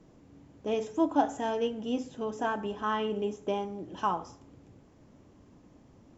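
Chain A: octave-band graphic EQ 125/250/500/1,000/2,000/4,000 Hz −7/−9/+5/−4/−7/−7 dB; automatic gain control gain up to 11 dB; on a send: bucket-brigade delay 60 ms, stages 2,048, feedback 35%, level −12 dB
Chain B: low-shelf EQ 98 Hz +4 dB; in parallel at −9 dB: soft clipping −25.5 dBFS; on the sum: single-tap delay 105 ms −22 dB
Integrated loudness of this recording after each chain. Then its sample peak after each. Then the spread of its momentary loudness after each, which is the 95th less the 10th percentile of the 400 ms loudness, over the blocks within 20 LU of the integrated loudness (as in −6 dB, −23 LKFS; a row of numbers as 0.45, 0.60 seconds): −23.0, −30.0 LKFS; −5.0, −11.5 dBFS; 7, 8 LU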